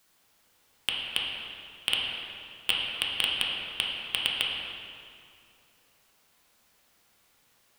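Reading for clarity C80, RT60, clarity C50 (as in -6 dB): 1.5 dB, 2.4 s, 0.0 dB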